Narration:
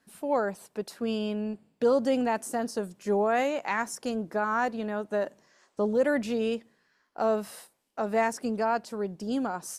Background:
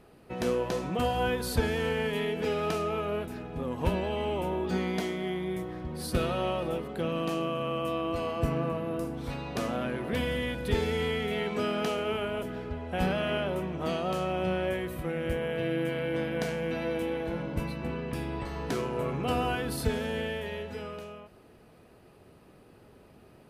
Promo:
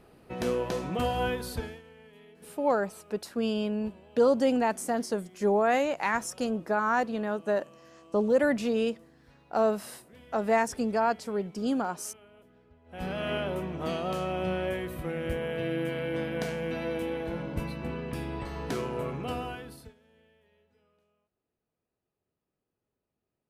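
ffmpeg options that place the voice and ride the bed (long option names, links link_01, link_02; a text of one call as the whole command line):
ffmpeg -i stem1.wav -i stem2.wav -filter_complex "[0:a]adelay=2350,volume=1dB[link_01];[1:a]volume=22dB,afade=type=out:start_time=1.24:duration=0.58:silence=0.0707946,afade=type=in:start_time=12.84:duration=0.47:silence=0.0749894,afade=type=out:start_time=18.92:duration=1.02:silence=0.0316228[link_02];[link_01][link_02]amix=inputs=2:normalize=0" out.wav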